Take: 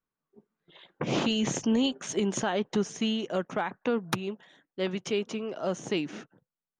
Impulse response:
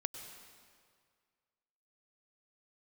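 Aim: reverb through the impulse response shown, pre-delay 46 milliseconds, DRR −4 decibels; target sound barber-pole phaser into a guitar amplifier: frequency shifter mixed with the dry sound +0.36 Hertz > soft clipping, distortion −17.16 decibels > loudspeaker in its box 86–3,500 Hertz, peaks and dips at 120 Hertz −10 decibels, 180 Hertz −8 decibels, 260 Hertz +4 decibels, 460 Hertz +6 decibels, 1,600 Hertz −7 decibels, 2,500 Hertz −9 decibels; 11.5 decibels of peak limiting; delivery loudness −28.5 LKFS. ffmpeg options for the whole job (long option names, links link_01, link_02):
-filter_complex "[0:a]alimiter=level_in=3dB:limit=-24dB:level=0:latency=1,volume=-3dB,asplit=2[link_01][link_02];[1:a]atrim=start_sample=2205,adelay=46[link_03];[link_02][link_03]afir=irnorm=-1:irlink=0,volume=4.5dB[link_04];[link_01][link_04]amix=inputs=2:normalize=0,asplit=2[link_05][link_06];[link_06]afreqshift=0.36[link_07];[link_05][link_07]amix=inputs=2:normalize=1,asoftclip=threshold=-26.5dB,highpass=86,equalizer=frequency=120:width_type=q:width=4:gain=-10,equalizer=frequency=180:width_type=q:width=4:gain=-8,equalizer=frequency=260:width_type=q:width=4:gain=4,equalizer=frequency=460:width_type=q:width=4:gain=6,equalizer=frequency=1600:width_type=q:width=4:gain=-7,equalizer=frequency=2500:width_type=q:width=4:gain=-9,lowpass=frequency=3500:width=0.5412,lowpass=frequency=3500:width=1.3066,volume=7dB"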